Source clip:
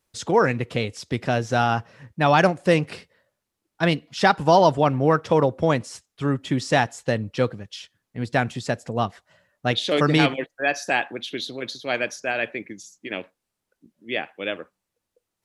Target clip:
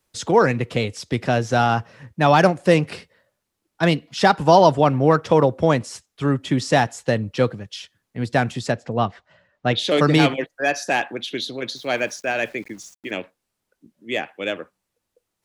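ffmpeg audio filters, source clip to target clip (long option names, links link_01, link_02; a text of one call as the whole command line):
ffmpeg -i in.wav -filter_complex "[0:a]acrossover=split=130|1300|3000[link_01][link_02][link_03][link_04];[link_03]asoftclip=type=tanh:threshold=-26dB[link_05];[link_01][link_02][link_05][link_04]amix=inputs=4:normalize=0,asettb=1/sr,asplit=3[link_06][link_07][link_08];[link_06]atrim=end=8.724[link_09];[link_07]atrim=start=8.72:end=9.79,asetpts=PTS-STARTPTS,afade=type=in:duration=0.004:curve=qsin,afade=type=out:start_time=1.066:duration=0.004:curve=qsin,lowpass=4100[link_10];[link_08]atrim=start=9.786[link_11];[link_09][link_10]acrossfade=duration=0.004:curve1=hsin:curve2=qsin[link_12];[link_12][link_11]acrossfade=duration=0.004:curve1=qsin:curve2=hsin,asettb=1/sr,asplit=3[link_13][link_14][link_15];[link_13]atrim=end=11.764[link_16];[link_14]atrim=start=11.76:end=13.11,asetpts=PTS-STARTPTS,afade=type=in:duration=0.004:curve=qsin,afade=type=out:start_time=1.346:duration=0.004:curve=qsin,aeval=exprs='val(0)*gte(abs(val(0)),0.00335)':channel_layout=same[link_17];[link_15]atrim=start=13.106[link_18];[link_16][link_17]acrossfade=duration=0.004:curve1=hsin:curve2=qsin[link_19];[link_19][link_18]acrossfade=duration=0.004:curve1=qsin:curve2=hsin,volume=3dB" out.wav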